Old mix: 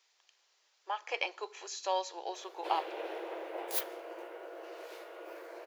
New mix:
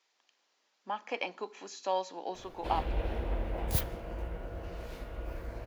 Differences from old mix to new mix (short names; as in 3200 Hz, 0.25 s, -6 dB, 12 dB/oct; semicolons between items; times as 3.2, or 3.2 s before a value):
speech: add tilt -2 dB/oct; master: remove brick-wall FIR high-pass 320 Hz